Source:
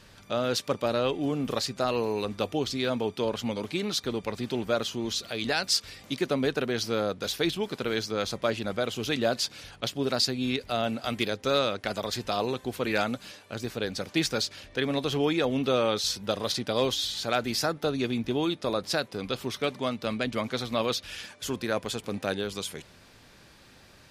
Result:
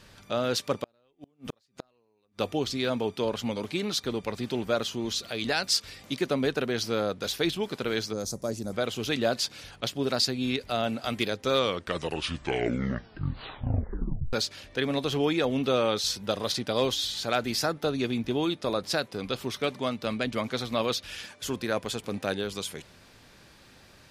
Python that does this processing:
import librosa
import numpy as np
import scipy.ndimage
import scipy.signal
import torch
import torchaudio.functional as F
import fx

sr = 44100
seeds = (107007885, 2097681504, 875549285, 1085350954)

y = fx.gate_flip(x, sr, shuts_db=-20.0, range_db=-41, at=(0.83, 2.39))
y = fx.curve_eq(y, sr, hz=(220.0, 650.0, 3100.0, 5800.0), db=(0, -5, -21, 6), at=(8.13, 8.73))
y = fx.edit(y, sr, fx.tape_stop(start_s=11.43, length_s=2.9), tone=tone)